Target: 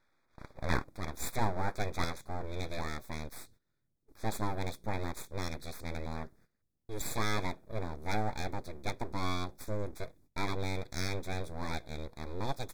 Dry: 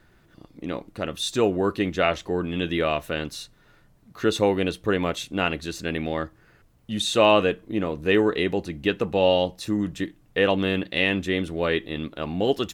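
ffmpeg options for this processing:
ffmpeg -i in.wav -af "agate=range=-16dB:threshold=-51dB:ratio=16:detection=peak,asetnsamples=nb_out_samples=441:pad=0,asendcmd='0.84 equalizer g -3.5;2.04 equalizer g -11',equalizer=frequency=1100:width_type=o:width=2.7:gain=13,aeval=exprs='abs(val(0))':channel_layout=same,asuperstop=centerf=2900:order=12:qfactor=3.3,volume=-5dB" out.wav

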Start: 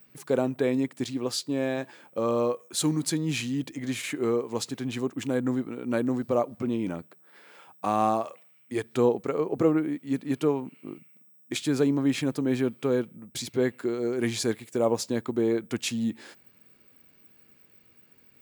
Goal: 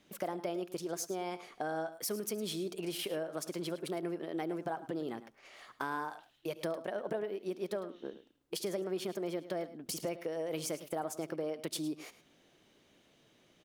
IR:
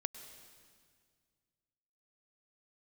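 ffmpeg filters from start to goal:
-filter_complex "[0:a]acompressor=threshold=-34dB:ratio=4,aecho=1:1:144:0.178[link_01];[1:a]atrim=start_sample=2205,atrim=end_sample=4410[link_02];[link_01][link_02]afir=irnorm=-1:irlink=0,asetrate=59535,aresample=44100"

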